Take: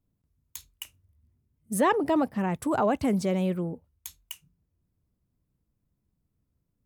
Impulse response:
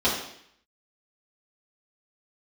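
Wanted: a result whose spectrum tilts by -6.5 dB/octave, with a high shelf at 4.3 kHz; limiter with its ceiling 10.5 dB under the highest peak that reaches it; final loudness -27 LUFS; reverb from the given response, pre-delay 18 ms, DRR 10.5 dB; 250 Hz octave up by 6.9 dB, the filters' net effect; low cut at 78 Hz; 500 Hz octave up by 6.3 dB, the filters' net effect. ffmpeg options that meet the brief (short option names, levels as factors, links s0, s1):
-filter_complex "[0:a]highpass=78,equalizer=f=250:t=o:g=7.5,equalizer=f=500:t=o:g=6,highshelf=f=4300:g=-3,alimiter=limit=0.15:level=0:latency=1,asplit=2[s0][s1];[1:a]atrim=start_sample=2205,adelay=18[s2];[s1][s2]afir=irnorm=-1:irlink=0,volume=0.0531[s3];[s0][s3]amix=inputs=2:normalize=0,volume=0.75"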